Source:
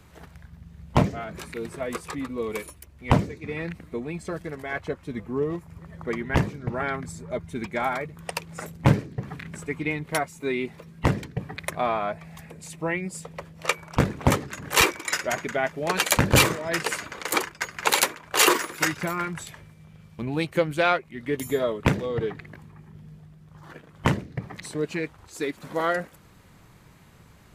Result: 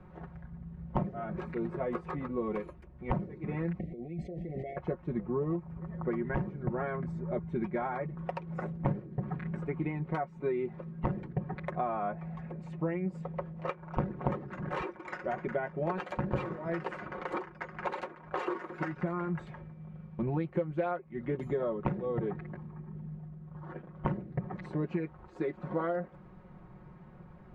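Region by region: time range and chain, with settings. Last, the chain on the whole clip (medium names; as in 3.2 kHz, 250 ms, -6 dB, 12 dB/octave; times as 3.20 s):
3.79–4.77 s: brick-wall FIR band-stop 780–1800 Hz + compressor with a negative ratio -40 dBFS
whole clip: comb 5.5 ms, depth 71%; compression 6:1, threshold -28 dBFS; low-pass 1.1 kHz 12 dB/octave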